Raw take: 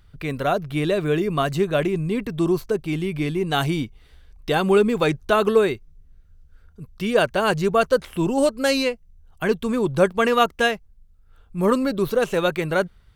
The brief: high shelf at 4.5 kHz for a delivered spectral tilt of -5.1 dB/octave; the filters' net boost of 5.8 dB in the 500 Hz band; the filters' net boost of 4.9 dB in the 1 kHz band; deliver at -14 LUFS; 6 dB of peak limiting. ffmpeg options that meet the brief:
-af "equalizer=f=500:t=o:g=6,equalizer=f=1000:t=o:g=5,highshelf=f=4500:g=-7,volume=1.68,alimiter=limit=0.841:level=0:latency=1"

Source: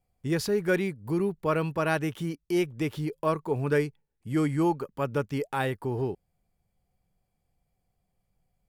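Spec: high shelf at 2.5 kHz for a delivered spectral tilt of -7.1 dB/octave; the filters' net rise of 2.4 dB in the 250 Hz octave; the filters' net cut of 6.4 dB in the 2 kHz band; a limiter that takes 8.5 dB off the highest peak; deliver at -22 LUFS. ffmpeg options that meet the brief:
-af "equalizer=f=250:t=o:g=4,equalizer=f=2000:t=o:g=-6.5,highshelf=f=2500:g=-6,volume=2.82,alimiter=limit=0.237:level=0:latency=1"

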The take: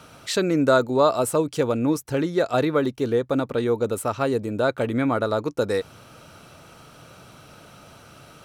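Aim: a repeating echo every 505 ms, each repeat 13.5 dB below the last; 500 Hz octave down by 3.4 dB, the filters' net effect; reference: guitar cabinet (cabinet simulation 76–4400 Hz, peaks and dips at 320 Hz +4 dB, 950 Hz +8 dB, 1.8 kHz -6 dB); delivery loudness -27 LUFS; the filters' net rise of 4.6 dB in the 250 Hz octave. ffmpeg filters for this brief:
-af "highpass=76,equalizer=f=320:t=q:w=4:g=4,equalizer=f=950:t=q:w=4:g=8,equalizer=f=1800:t=q:w=4:g=-6,lowpass=f=4400:w=0.5412,lowpass=f=4400:w=1.3066,equalizer=f=250:t=o:g=5.5,equalizer=f=500:t=o:g=-7,aecho=1:1:505|1010:0.211|0.0444,volume=0.562"

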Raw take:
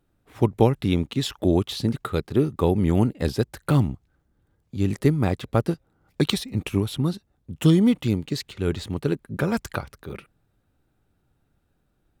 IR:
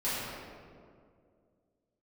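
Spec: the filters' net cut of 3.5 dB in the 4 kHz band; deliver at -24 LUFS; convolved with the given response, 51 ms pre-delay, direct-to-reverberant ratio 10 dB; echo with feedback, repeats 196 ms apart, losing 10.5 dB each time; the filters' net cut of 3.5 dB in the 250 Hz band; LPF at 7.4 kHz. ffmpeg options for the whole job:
-filter_complex "[0:a]lowpass=7400,equalizer=f=250:t=o:g=-5,equalizer=f=4000:t=o:g=-4,aecho=1:1:196|392|588:0.299|0.0896|0.0269,asplit=2[s0][s1];[1:a]atrim=start_sample=2205,adelay=51[s2];[s1][s2]afir=irnorm=-1:irlink=0,volume=0.112[s3];[s0][s3]amix=inputs=2:normalize=0,volume=1.19"

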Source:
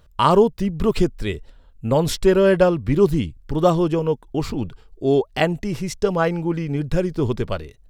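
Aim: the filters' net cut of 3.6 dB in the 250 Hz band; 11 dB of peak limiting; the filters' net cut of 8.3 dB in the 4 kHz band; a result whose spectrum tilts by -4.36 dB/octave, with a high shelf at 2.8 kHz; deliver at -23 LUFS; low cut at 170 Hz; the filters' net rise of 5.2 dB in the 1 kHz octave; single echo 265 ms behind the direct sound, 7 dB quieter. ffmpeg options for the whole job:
-af "highpass=170,equalizer=f=250:t=o:g=-4.5,equalizer=f=1000:t=o:g=8,highshelf=f=2800:g=-8.5,equalizer=f=4000:t=o:g=-5.5,alimiter=limit=0.316:level=0:latency=1,aecho=1:1:265:0.447,volume=0.944"

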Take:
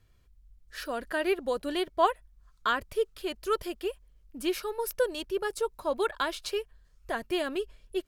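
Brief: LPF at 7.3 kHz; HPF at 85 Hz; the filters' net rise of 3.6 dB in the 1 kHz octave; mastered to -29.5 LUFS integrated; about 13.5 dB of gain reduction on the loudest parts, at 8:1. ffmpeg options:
-af "highpass=85,lowpass=7300,equalizer=f=1000:t=o:g=4.5,acompressor=threshold=0.0398:ratio=8,volume=1.88"

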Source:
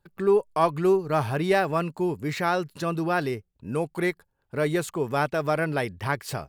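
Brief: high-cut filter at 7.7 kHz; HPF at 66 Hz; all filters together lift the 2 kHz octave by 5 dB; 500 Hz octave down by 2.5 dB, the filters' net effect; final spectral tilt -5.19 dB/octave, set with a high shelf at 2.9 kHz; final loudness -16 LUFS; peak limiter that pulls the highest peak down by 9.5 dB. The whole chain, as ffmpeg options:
-af "highpass=66,lowpass=7700,equalizer=f=500:t=o:g=-4,equalizer=f=2000:t=o:g=4.5,highshelf=f=2900:g=6.5,volume=4.47,alimiter=limit=0.596:level=0:latency=1"

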